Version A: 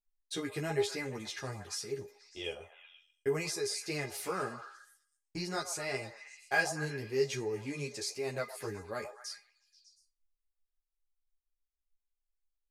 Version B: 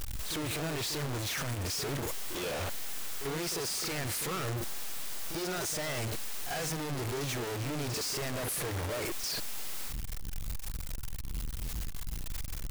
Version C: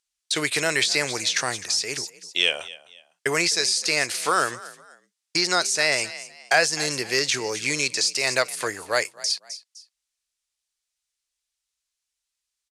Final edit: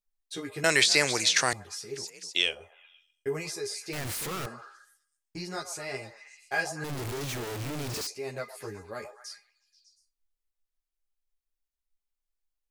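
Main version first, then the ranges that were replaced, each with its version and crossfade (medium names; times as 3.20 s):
A
0.64–1.53 s: from C
2.04–2.44 s: from C, crossfade 0.24 s
3.93–4.46 s: from B
6.84–8.07 s: from B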